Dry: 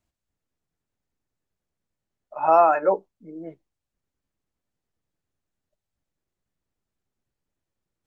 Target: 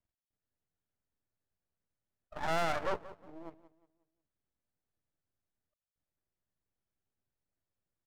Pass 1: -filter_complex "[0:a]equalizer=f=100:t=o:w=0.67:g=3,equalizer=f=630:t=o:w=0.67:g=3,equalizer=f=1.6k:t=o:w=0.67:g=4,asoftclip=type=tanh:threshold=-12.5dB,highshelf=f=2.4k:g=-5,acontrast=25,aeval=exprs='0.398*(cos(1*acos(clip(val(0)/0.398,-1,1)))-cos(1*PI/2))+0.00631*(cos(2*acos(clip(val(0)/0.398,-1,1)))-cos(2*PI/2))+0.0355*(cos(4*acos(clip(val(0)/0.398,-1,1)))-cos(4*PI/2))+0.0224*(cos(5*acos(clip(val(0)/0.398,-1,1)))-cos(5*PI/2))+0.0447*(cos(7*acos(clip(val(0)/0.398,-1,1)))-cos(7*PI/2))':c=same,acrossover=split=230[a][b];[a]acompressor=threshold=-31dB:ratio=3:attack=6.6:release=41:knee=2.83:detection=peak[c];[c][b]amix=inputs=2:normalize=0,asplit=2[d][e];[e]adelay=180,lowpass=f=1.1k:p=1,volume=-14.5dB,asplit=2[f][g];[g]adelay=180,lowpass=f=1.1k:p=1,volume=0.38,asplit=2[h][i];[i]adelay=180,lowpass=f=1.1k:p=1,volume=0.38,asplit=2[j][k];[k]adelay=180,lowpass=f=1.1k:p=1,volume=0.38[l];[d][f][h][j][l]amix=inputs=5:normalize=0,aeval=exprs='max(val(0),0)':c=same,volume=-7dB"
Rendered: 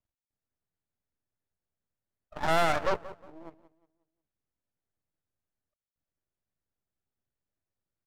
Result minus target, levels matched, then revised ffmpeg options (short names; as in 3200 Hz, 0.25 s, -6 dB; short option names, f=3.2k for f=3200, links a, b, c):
soft clip: distortion -7 dB
-filter_complex "[0:a]equalizer=f=100:t=o:w=0.67:g=3,equalizer=f=630:t=o:w=0.67:g=3,equalizer=f=1.6k:t=o:w=0.67:g=4,asoftclip=type=tanh:threshold=-21.5dB,highshelf=f=2.4k:g=-5,acontrast=25,aeval=exprs='0.398*(cos(1*acos(clip(val(0)/0.398,-1,1)))-cos(1*PI/2))+0.00631*(cos(2*acos(clip(val(0)/0.398,-1,1)))-cos(2*PI/2))+0.0355*(cos(4*acos(clip(val(0)/0.398,-1,1)))-cos(4*PI/2))+0.0224*(cos(5*acos(clip(val(0)/0.398,-1,1)))-cos(5*PI/2))+0.0447*(cos(7*acos(clip(val(0)/0.398,-1,1)))-cos(7*PI/2))':c=same,acrossover=split=230[a][b];[a]acompressor=threshold=-31dB:ratio=3:attack=6.6:release=41:knee=2.83:detection=peak[c];[c][b]amix=inputs=2:normalize=0,asplit=2[d][e];[e]adelay=180,lowpass=f=1.1k:p=1,volume=-14.5dB,asplit=2[f][g];[g]adelay=180,lowpass=f=1.1k:p=1,volume=0.38,asplit=2[h][i];[i]adelay=180,lowpass=f=1.1k:p=1,volume=0.38,asplit=2[j][k];[k]adelay=180,lowpass=f=1.1k:p=1,volume=0.38[l];[d][f][h][j][l]amix=inputs=5:normalize=0,aeval=exprs='max(val(0),0)':c=same,volume=-7dB"